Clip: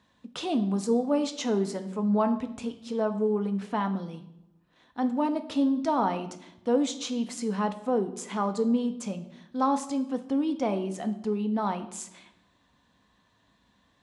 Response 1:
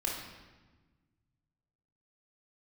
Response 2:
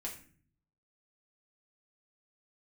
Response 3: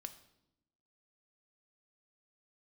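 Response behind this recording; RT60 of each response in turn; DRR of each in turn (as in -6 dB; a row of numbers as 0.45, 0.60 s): 3; 1.3, 0.45, 0.85 s; -2.5, -2.5, 8.0 dB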